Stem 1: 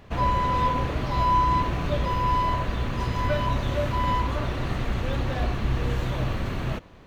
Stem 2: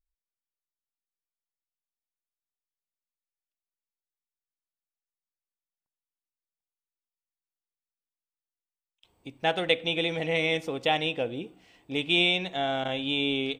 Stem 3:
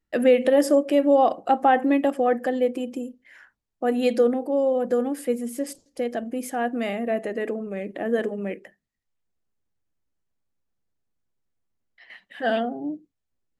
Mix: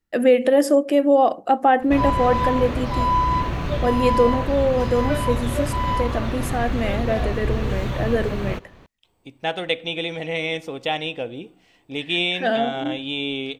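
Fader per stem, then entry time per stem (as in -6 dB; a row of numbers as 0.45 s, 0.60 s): +1.5 dB, +1.0 dB, +2.0 dB; 1.80 s, 0.00 s, 0.00 s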